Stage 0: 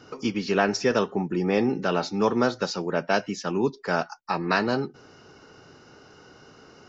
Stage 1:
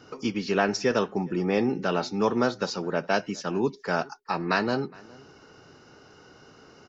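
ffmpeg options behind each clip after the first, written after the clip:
-filter_complex "[0:a]asplit=2[s0][s1];[s1]adelay=414,volume=0.0631,highshelf=f=4000:g=-9.32[s2];[s0][s2]amix=inputs=2:normalize=0,volume=0.841"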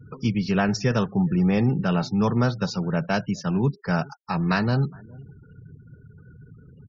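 -af "lowshelf=f=210:t=q:w=1.5:g=13,afftfilt=real='re*gte(hypot(re,im),0.00891)':imag='im*gte(hypot(re,im),0.00891)':win_size=1024:overlap=0.75"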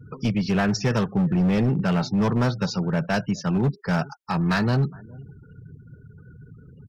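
-af "asoftclip=type=hard:threshold=0.119,volume=1.19"

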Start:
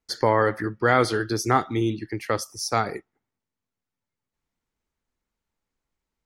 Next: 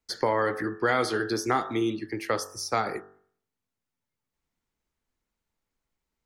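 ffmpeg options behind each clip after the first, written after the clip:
-filter_complex "[0:a]bandreject=f=47.53:t=h:w=4,bandreject=f=95.06:t=h:w=4,bandreject=f=142.59:t=h:w=4,bandreject=f=190.12:t=h:w=4,bandreject=f=237.65:t=h:w=4,bandreject=f=285.18:t=h:w=4,bandreject=f=332.71:t=h:w=4,bandreject=f=380.24:t=h:w=4,bandreject=f=427.77:t=h:w=4,bandreject=f=475.3:t=h:w=4,bandreject=f=522.83:t=h:w=4,bandreject=f=570.36:t=h:w=4,bandreject=f=617.89:t=h:w=4,bandreject=f=665.42:t=h:w=4,bandreject=f=712.95:t=h:w=4,bandreject=f=760.48:t=h:w=4,bandreject=f=808.01:t=h:w=4,bandreject=f=855.54:t=h:w=4,bandreject=f=903.07:t=h:w=4,bandreject=f=950.6:t=h:w=4,bandreject=f=998.13:t=h:w=4,bandreject=f=1045.66:t=h:w=4,bandreject=f=1093.19:t=h:w=4,bandreject=f=1140.72:t=h:w=4,bandreject=f=1188.25:t=h:w=4,bandreject=f=1235.78:t=h:w=4,bandreject=f=1283.31:t=h:w=4,bandreject=f=1330.84:t=h:w=4,bandreject=f=1378.37:t=h:w=4,bandreject=f=1425.9:t=h:w=4,bandreject=f=1473.43:t=h:w=4,bandreject=f=1520.96:t=h:w=4,bandreject=f=1568.49:t=h:w=4,bandreject=f=1616.02:t=h:w=4,bandreject=f=1663.55:t=h:w=4,bandreject=f=1711.08:t=h:w=4,bandreject=f=1758.61:t=h:w=4,bandreject=f=1806.14:t=h:w=4,bandreject=f=1853.67:t=h:w=4,acrossover=split=200|3100[s0][s1][s2];[s0]acompressor=threshold=0.00631:ratio=4[s3];[s1]acompressor=threshold=0.0891:ratio=4[s4];[s2]acompressor=threshold=0.02:ratio=4[s5];[s3][s4][s5]amix=inputs=3:normalize=0"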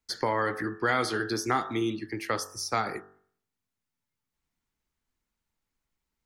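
-af "equalizer=f=510:w=1.2:g=-4.5"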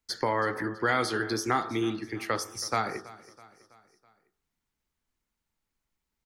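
-af "aecho=1:1:327|654|981|1308:0.106|0.0551|0.0286|0.0149"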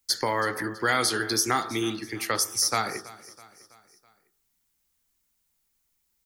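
-af "crystalizer=i=3.5:c=0"

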